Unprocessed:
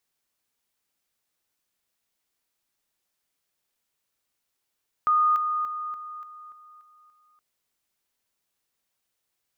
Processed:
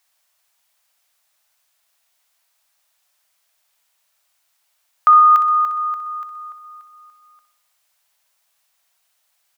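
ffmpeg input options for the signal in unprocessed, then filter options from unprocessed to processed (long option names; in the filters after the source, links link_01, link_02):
-f lavfi -i "aevalsrc='pow(10,(-17.5-6*floor(t/0.29))/20)*sin(2*PI*1230*t)':duration=2.32:sample_rate=44100"
-filter_complex "[0:a]firequalizer=gain_entry='entry(140,0);entry(320,-18);entry(610,12)':delay=0.05:min_phase=1,asplit=2[link_01][link_02];[link_02]aecho=0:1:62|124|186|248|310|372:0.299|0.161|0.0871|0.047|0.0254|0.0137[link_03];[link_01][link_03]amix=inputs=2:normalize=0"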